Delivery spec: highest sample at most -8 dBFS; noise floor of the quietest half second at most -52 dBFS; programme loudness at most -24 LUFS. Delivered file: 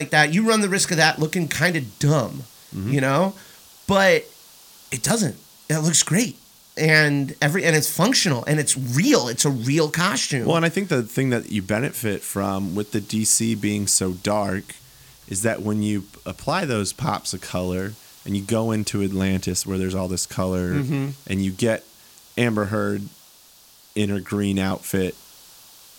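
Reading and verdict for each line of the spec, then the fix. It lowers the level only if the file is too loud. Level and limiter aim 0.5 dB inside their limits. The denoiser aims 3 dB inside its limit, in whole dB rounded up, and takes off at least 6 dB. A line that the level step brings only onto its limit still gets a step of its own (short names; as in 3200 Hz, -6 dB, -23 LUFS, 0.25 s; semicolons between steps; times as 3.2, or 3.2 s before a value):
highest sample -3.0 dBFS: fail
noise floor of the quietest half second -51 dBFS: fail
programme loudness -21.5 LUFS: fail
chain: gain -3 dB; limiter -8.5 dBFS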